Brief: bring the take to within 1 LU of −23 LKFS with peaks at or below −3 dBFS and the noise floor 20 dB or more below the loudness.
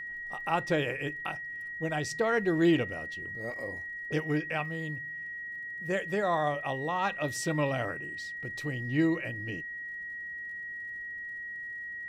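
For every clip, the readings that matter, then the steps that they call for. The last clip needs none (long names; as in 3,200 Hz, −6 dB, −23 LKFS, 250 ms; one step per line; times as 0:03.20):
crackle rate 46 per second; interfering tone 1,900 Hz; level of the tone −37 dBFS; integrated loudness −32.0 LKFS; sample peak −14.5 dBFS; target loudness −23.0 LKFS
→ click removal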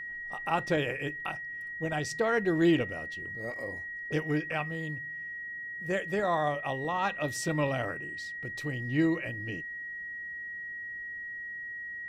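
crackle rate 0.17 per second; interfering tone 1,900 Hz; level of the tone −37 dBFS
→ notch filter 1,900 Hz, Q 30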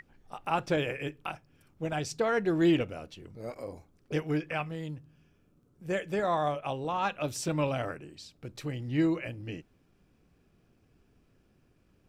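interfering tone none found; integrated loudness −32.0 LKFS; sample peak −15.5 dBFS; target loudness −23.0 LKFS
→ level +9 dB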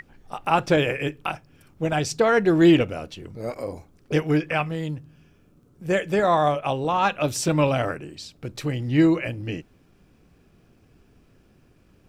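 integrated loudness −23.0 LKFS; sample peak −6.5 dBFS; background noise floor −59 dBFS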